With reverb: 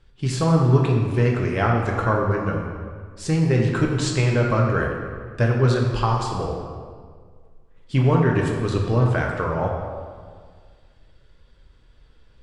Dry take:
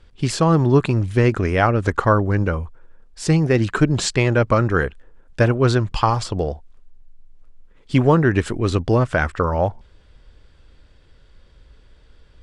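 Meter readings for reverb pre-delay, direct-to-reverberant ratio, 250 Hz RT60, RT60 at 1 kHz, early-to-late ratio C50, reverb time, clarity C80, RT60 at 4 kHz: 3 ms, -1.0 dB, 1.9 s, 1.8 s, 2.5 dB, 1.8 s, 4.0 dB, 1.2 s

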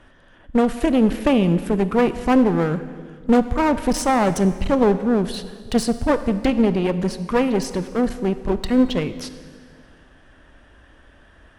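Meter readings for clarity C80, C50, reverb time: 13.5 dB, 13.0 dB, 1.8 s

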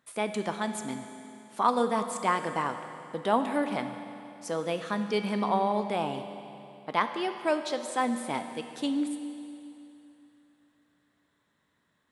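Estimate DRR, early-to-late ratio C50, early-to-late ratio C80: 7.0 dB, 8.0 dB, 8.5 dB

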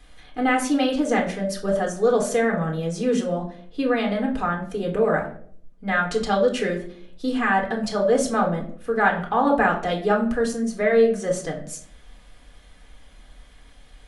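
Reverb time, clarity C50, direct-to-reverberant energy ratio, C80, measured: 0.55 s, 9.5 dB, 0.0 dB, 13.5 dB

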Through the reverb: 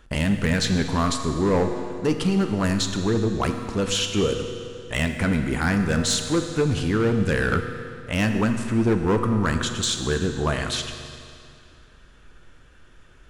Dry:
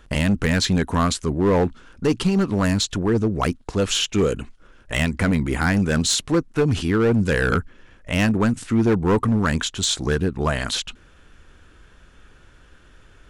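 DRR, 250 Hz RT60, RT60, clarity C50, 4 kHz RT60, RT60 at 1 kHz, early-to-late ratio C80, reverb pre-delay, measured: 5.5 dB, 2.4 s, 2.4 s, 6.5 dB, 2.2 s, 2.4 s, 7.5 dB, 8 ms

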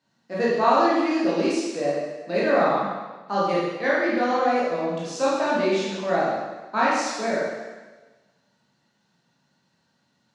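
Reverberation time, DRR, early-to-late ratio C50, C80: 1.3 s, -8.0 dB, -1.5 dB, 1.5 dB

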